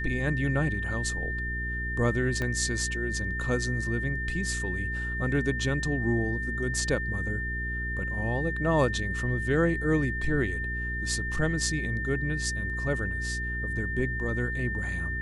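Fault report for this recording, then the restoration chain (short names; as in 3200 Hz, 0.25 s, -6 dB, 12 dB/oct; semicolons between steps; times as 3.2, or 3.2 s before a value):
hum 60 Hz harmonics 7 -34 dBFS
tone 1800 Hz -32 dBFS
2.42 pop -18 dBFS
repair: de-click; de-hum 60 Hz, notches 7; notch 1800 Hz, Q 30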